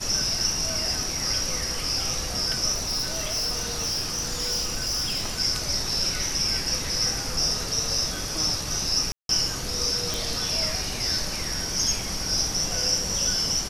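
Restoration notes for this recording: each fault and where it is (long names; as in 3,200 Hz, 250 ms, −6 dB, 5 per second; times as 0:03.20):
0:02.73–0:05.39: clipping −23 dBFS
0:09.12–0:09.29: drop-out 172 ms
0:10.14: click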